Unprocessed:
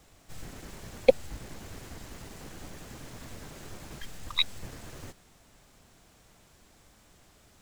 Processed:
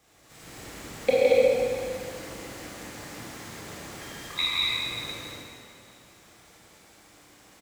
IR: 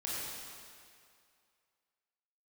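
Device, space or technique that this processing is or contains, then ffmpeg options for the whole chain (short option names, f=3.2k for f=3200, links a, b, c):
stadium PA: -filter_complex "[0:a]highpass=f=190:p=1,equalizer=f=2.1k:t=o:w=0.43:g=3.5,aecho=1:1:163.3|227.4:0.794|0.708[a];[1:a]atrim=start_sample=2205[b];[a][b]afir=irnorm=-1:irlink=0"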